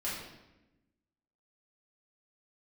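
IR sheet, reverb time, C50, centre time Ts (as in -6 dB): 1.0 s, 1.5 dB, 62 ms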